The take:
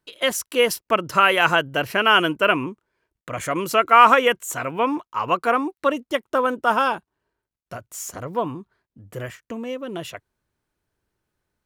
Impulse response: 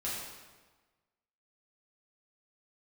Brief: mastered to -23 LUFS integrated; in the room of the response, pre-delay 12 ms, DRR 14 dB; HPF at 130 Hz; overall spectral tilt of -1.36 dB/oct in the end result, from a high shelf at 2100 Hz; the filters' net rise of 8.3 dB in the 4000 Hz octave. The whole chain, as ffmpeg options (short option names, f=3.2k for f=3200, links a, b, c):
-filter_complex "[0:a]highpass=130,highshelf=f=2.1k:g=6.5,equalizer=f=4k:t=o:g=6.5,asplit=2[a][b];[1:a]atrim=start_sample=2205,adelay=12[c];[b][c]afir=irnorm=-1:irlink=0,volume=-18dB[d];[a][d]amix=inputs=2:normalize=0,volume=-6.5dB"